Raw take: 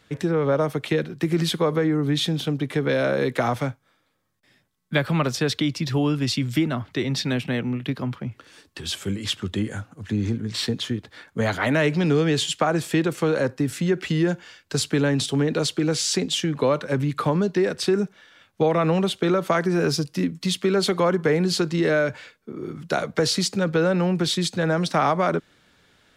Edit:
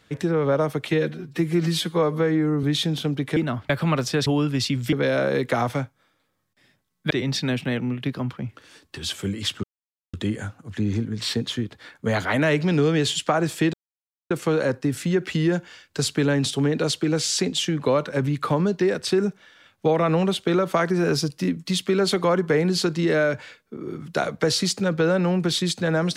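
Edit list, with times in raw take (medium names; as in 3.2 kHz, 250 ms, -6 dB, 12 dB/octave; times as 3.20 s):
0.91–2.06 s: stretch 1.5×
2.79–4.97 s: swap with 6.60–6.93 s
5.54–5.94 s: delete
9.46 s: insert silence 0.50 s
13.06 s: insert silence 0.57 s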